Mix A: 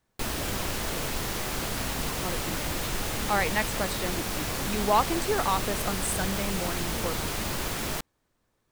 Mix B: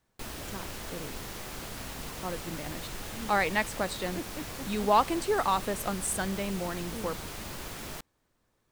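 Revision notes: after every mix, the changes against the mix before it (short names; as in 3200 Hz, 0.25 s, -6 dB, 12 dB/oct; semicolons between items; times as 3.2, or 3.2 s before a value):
background -9.0 dB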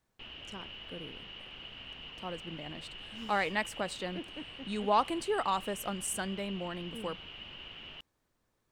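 speech -4.0 dB; background: add ladder low-pass 3000 Hz, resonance 90%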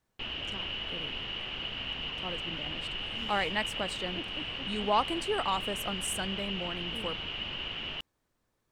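background +10.0 dB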